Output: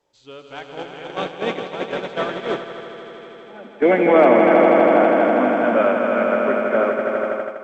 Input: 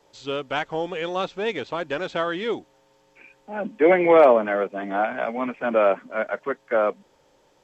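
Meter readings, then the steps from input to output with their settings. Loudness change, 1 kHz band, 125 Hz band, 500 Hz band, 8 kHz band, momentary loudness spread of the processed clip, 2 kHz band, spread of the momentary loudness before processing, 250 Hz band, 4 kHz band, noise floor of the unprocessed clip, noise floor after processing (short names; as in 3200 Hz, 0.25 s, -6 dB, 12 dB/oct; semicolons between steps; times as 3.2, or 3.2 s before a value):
+5.5 dB, +5.0 dB, +5.0 dB, +4.5 dB, n/a, 21 LU, +4.5 dB, 14 LU, +7.5 dB, +1.0 dB, -61 dBFS, -42 dBFS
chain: swelling echo 81 ms, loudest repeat 5, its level -6 dB; gate -21 dBFS, range -11 dB; dynamic EQ 250 Hz, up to +6 dB, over -35 dBFS, Q 2.1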